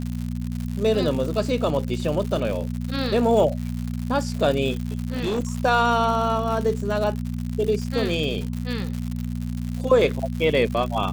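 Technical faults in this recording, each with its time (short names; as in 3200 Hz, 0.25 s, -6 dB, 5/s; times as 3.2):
crackle 160/s -28 dBFS
hum 60 Hz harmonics 4 -28 dBFS
4.87–5.4 clipped -21 dBFS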